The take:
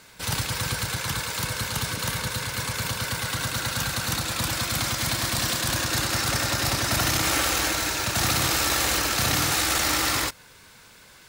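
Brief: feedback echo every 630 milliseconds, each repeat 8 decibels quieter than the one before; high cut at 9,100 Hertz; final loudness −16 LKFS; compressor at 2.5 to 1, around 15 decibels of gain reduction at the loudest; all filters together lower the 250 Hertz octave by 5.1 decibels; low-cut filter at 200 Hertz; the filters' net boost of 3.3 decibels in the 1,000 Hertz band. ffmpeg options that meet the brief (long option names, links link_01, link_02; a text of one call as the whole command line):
ffmpeg -i in.wav -af "highpass=200,lowpass=9100,equalizer=frequency=250:width_type=o:gain=-5,equalizer=frequency=1000:width_type=o:gain=4.5,acompressor=threshold=-44dB:ratio=2.5,aecho=1:1:630|1260|1890|2520|3150:0.398|0.159|0.0637|0.0255|0.0102,volume=21.5dB" out.wav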